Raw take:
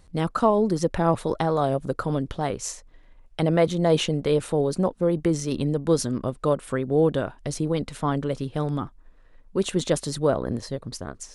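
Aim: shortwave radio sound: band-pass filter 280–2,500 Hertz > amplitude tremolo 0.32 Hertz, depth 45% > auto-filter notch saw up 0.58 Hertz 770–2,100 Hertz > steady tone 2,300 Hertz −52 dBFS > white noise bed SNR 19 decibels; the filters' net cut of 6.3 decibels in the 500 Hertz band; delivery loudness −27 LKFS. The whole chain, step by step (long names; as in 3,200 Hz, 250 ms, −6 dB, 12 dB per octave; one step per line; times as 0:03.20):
band-pass filter 280–2,500 Hz
parametric band 500 Hz −7 dB
amplitude tremolo 0.32 Hz, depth 45%
auto-filter notch saw up 0.58 Hz 770–2,100 Hz
steady tone 2,300 Hz −52 dBFS
white noise bed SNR 19 dB
level +8 dB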